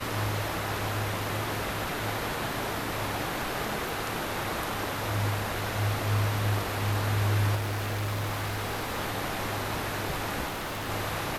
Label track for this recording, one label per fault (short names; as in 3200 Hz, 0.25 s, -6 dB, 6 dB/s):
3.890000	3.890000	pop
7.550000	9.000000	clipped -27.5 dBFS
10.480000	10.900000	clipped -31 dBFS